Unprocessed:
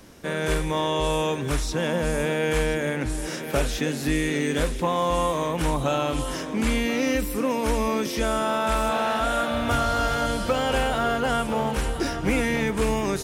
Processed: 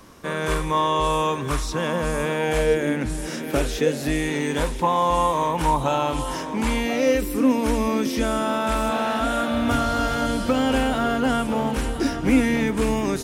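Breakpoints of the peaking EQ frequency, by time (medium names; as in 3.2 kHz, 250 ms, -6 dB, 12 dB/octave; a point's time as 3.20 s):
peaking EQ +11.5 dB 0.33 oct
2.35 s 1.1 kHz
3.13 s 170 Hz
4.34 s 920 Hz
6.79 s 920 Hz
7.44 s 260 Hz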